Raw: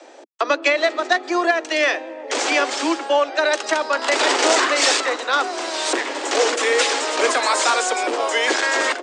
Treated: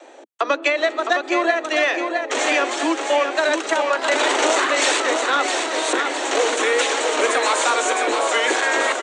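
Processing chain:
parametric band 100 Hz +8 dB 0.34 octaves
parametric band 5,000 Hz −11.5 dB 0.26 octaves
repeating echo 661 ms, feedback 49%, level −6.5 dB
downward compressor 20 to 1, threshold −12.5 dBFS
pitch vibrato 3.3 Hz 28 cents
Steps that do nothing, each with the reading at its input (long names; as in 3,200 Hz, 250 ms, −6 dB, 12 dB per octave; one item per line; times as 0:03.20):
parametric band 100 Hz: nothing at its input below 230 Hz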